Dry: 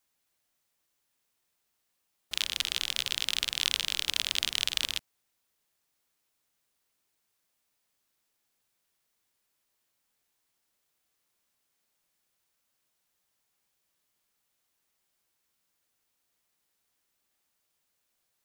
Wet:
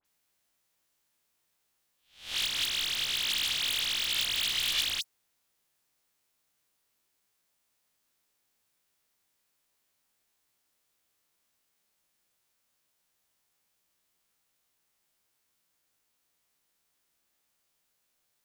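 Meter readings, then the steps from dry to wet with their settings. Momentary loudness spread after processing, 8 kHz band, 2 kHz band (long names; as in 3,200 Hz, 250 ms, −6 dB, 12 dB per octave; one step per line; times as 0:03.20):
7 LU, 0.0 dB, +1.0 dB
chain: peak hold with a rise ahead of every peak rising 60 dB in 0.43 s
wave folding −10.5 dBFS
all-pass dispersion highs, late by 52 ms, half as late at 2,800 Hz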